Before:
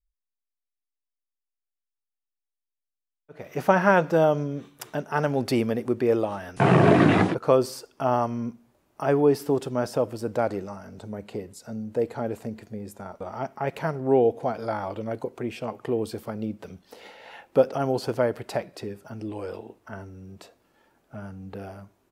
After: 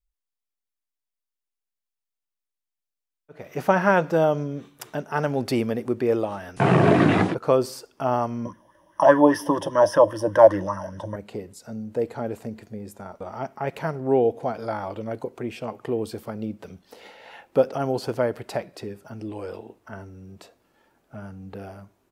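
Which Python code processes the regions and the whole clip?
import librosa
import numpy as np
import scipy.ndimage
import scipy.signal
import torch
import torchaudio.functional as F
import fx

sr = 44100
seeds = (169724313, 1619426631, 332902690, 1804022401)

y = fx.chain(x, sr, fx.ripple_eq(per_octave=1.2, db=17),
    fx.bell_lfo(hz=5.0, low_hz=670.0, high_hz=1600.0, db=17), at=(8.45, 11.16))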